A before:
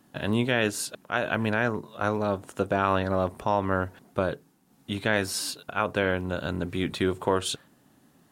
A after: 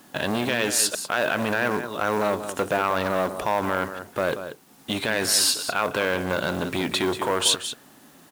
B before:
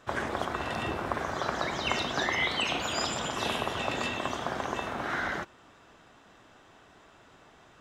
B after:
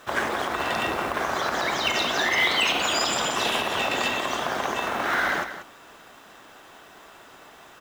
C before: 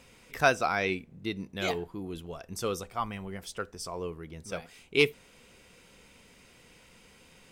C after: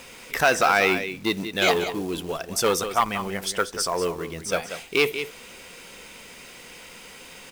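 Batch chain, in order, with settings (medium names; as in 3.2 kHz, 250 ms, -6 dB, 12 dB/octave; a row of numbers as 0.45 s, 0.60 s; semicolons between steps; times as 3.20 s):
peaking EQ 99 Hz -4 dB 1 oct; peak limiter -20 dBFS; companded quantiser 6-bit; bass shelf 280 Hz -9 dB; on a send: delay 186 ms -11.5 dB; on the sum: transformer saturation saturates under 1.2 kHz; normalise loudness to -24 LUFS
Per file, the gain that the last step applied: +12.0 dB, +9.5 dB, +14.0 dB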